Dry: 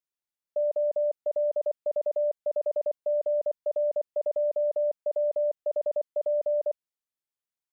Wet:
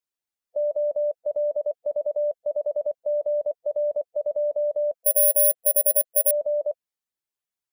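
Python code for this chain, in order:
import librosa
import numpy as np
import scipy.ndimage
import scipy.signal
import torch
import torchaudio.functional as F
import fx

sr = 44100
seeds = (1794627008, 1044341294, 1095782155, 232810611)

y = fx.spec_quant(x, sr, step_db=15)
y = fx.resample_bad(y, sr, factor=4, down='filtered', up='zero_stuff', at=(5.04, 6.31))
y = y * 10.0 ** (2.0 / 20.0)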